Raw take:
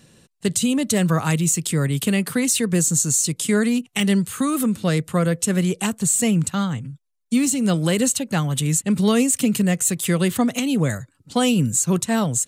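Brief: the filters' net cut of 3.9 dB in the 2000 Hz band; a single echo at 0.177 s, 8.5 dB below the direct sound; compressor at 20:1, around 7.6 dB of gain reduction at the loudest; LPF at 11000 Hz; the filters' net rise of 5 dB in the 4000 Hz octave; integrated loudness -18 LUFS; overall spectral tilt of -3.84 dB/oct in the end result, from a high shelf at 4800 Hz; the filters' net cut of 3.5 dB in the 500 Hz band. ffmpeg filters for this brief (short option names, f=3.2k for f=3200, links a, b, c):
-af "lowpass=11k,equalizer=f=500:t=o:g=-4,equalizer=f=2k:t=o:g=-8.5,equalizer=f=4k:t=o:g=8,highshelf=f=4.8k:g=3.5,acompressor=threshold=-20dB:ratio=20,aecho=1:1:177:0.376,volume=5.5dB"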